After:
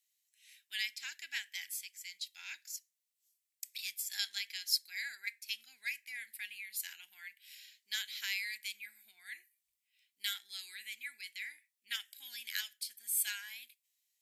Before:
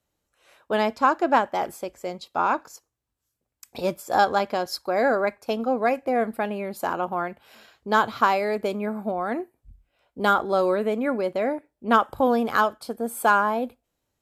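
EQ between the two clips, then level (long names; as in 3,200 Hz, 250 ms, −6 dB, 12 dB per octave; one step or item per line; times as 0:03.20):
elliptic high-pass filter 1,900 Hz, stop band 40 dB
spectral tilt +3 dB per octave
−6.0 dB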